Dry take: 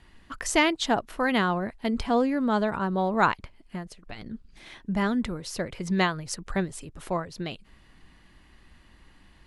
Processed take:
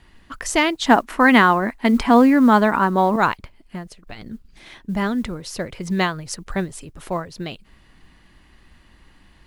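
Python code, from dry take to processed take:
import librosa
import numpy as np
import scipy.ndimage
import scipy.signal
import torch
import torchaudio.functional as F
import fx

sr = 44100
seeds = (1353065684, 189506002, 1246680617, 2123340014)

y = fx.graphic_eq(x, sr, hz=(125, 250, 1000, 2000, 8000), db=(-10, 11, 8, 8, 6), at=(0.86, 3.16))
y = fx.mod_noise(y, sr, seeds[0], snr_db=35)
y = y * librosa.db_to_amplitude(3.5)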